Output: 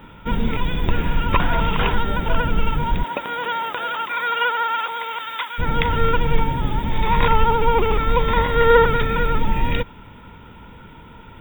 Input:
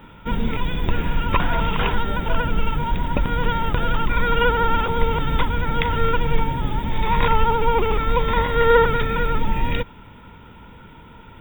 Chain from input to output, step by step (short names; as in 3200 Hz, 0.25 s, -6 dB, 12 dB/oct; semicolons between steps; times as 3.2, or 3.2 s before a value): 3.03–5.58 HPF 420 Hz -> 1300 Hz 12 dB/oct; gain +1.5 dB